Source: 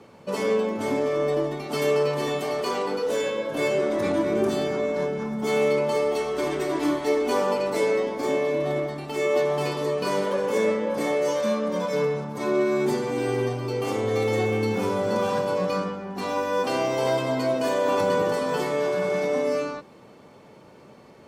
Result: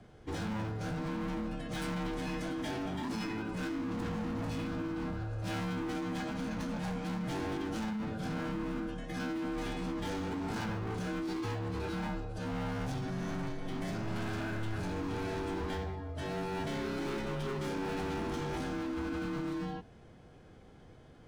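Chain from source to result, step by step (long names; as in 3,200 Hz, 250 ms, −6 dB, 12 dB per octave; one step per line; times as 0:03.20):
gain into a clipping stage and back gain 28 dB
formants moved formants −5 semitones
frequency shifter −110 Hz
level −6 dB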